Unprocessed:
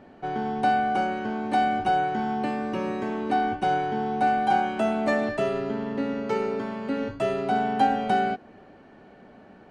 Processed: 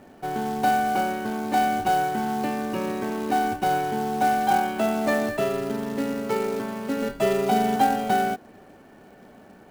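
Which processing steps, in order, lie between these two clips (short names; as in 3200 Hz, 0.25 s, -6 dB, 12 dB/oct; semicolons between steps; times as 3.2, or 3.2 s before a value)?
7.02–7.76 comb 5 ms, depth 86%; short-mantissa float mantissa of 2-bit; gain +1 dB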